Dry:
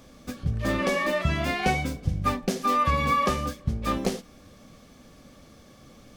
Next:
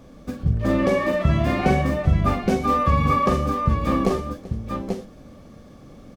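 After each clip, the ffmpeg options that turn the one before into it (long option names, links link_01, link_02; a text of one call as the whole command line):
ffmpeg -i in.wav -af "tiltshelf=frequency=1400:gain=6,aecho=1:1:42|117|387|838|848:0.422|0.119|0.126|0.501|0.141" out.wav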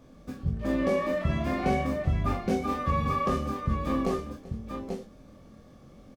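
ffmpeg -i in.wav -filter_complex "[0:a]asplit=2[link_01][link_02];[link_02]adelay=23,volume=-4dB[link_03];[link_01][link_03]amix=inputs=2:normalize=0,volume=-8.5dB" out.wav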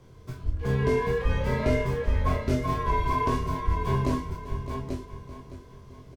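ffmpeg -i in.wav -af "afreqshift=-130,aecho=1:1:613|1226|1839|2452:0.251|0.103|0.0422|0.0173,volume=2dB" out.wav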